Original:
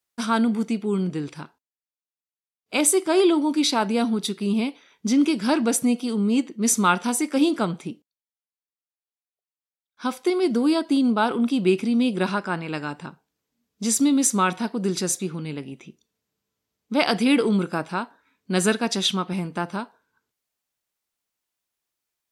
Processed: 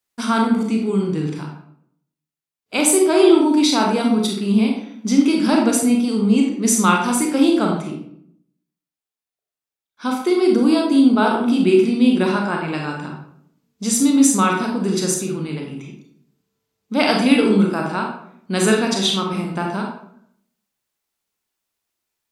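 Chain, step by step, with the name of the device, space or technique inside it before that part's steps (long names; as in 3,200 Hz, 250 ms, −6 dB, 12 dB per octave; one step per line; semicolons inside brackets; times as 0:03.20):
bathroom (convolution reverb RT60 0.70 s, pre-delay 29 ms, DRR 0 dB)
level +1.5 dB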